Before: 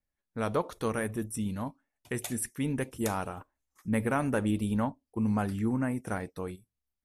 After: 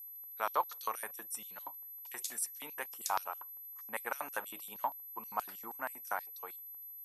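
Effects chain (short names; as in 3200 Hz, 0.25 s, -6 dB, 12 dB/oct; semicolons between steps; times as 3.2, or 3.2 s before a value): added harmonics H 8 -40 dB, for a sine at -16.5 dBFS; whine 12000 Hz -43 dBFS; LFO high-pass square 6.3 Hz 910–4900 Hz; gain -3.5 dB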